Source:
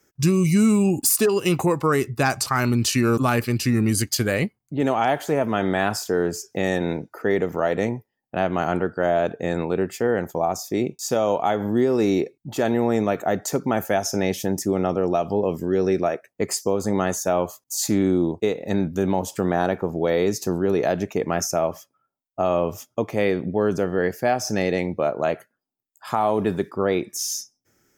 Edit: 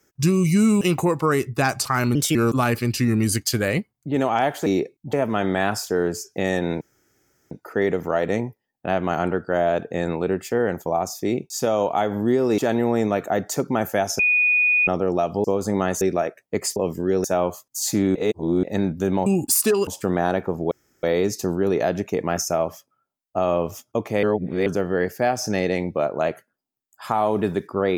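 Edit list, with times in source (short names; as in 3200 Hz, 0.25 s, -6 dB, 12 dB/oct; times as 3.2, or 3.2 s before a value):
0.81–1.42 move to 19.22
2.76–3.01 speed 124%
7 insert room tone 0.70 s
12.07–12.54 move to 5.32
14.15–14.83 bleep 2470 Hz -15 dBFS
15.4–15.88 swap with 16.63–17.2
18.11–18.59 reverse
20.06 insert room tone 0.32 s
23.26–23.69 reverse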